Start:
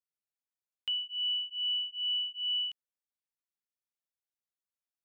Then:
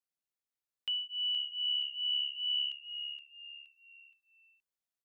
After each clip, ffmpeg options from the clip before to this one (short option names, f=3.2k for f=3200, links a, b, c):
-filter_complex "[0:a]asplit=5[a][b][c][d][e];[b]adelay=471,afreqshift=-71,volume=-8dB[f];[c]adelay=942,afreqshift=-142,volume=-16.4dB[g];[d]adelay=1413,afreqshift=-213,volume=-24.8dB[h];[e]adelay=1884,afreqshift=-284,volume=-33.2dB[i];[a][f][g][h][i]amix=inputs=5:normalize=0,volume=-1.5dB"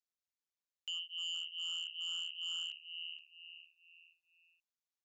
-af "highshelf=f=2.7k:g=8.5,aresample=16000,asoftclip=type=hard:threshold=-28.5dB,aresample=44100,tremolo=f=170:d=0.947,volume=-5.5dB"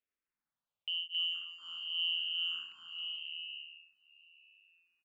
-filter_complex "[0:a]lowpass=f=3.2k:w=0.5412,lowpass=f=3.2k:w=1.3066,asplit=2[a][b];[b]aecho=0:1:270|445.5|559.6|633.7|681.9:0.631|0.398|0.251|0.158|0.1[c];[a][c]amix=inputs=2:normalize=0,asplit=2[d][e];[e]afreqshift=-0.86[f];[d][f]amix=inputs=2:normalize=1,volume=6.5dB"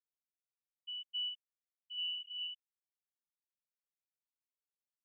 -af "lowpass=f=1k:p=1,afftfilt=real='re*gte(hypot(re,im),0.0398)':imag='im*gte(hypot(re,im),0.0398)':win_size=1024:overlap=0.75,aecho=1:1:0.9:0.58,volume=10.5dB"